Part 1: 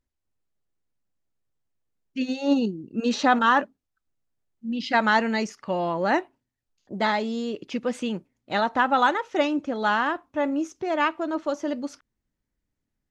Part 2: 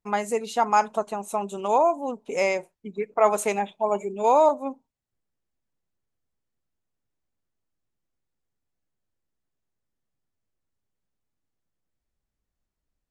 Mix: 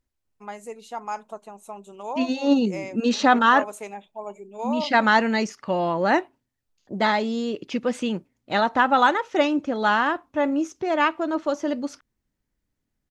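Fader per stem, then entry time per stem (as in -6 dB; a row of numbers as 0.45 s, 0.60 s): +2.5 dB, -11.0 dB; 0.00 s, 0.35 s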